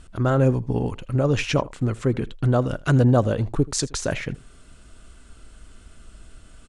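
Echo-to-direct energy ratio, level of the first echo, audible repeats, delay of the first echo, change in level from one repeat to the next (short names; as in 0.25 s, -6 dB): -21.5 dB, -21.5 dB, 1, 81 ms, no steady repeat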